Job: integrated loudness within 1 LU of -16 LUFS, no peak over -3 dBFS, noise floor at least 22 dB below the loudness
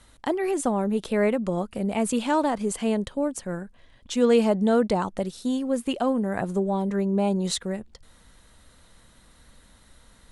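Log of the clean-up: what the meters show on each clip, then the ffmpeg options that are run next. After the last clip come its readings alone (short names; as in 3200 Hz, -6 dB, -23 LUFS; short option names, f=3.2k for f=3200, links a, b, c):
loudness -25.5 LUFS; peak -8.5 dBFS; loudness target -16.0 LUFS
-> -af "volume=9.5dB,alimiter=limit=-3dB:level=0:latency=1"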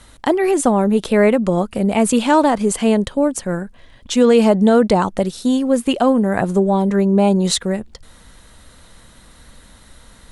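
loudness -16.0 LUFS; peak -3.0 dBFS; noise floor -47 dBFS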